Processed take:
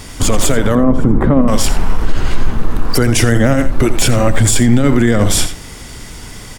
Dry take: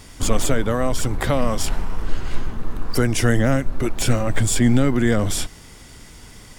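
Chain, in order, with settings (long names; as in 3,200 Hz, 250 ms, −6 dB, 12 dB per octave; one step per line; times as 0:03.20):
0:00.75–0:01.48: drawn EQ curve 110 Hz 0 dB, 220 Hz +10 dB, 700 Hz −4 dB, 1,100 Hz −2 dB, 4,900 Hz −27 dB
on a send: single-tap delay 85 ms −12 dB
on the sum: boost into a limiter +12 dB
level −1 dB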